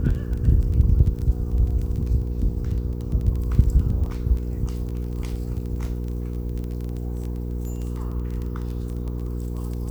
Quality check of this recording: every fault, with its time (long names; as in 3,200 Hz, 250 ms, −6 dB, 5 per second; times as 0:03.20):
surface crackle 13 per second −28 dBFS
mains hum 60 Hz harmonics 8 −28 dBFS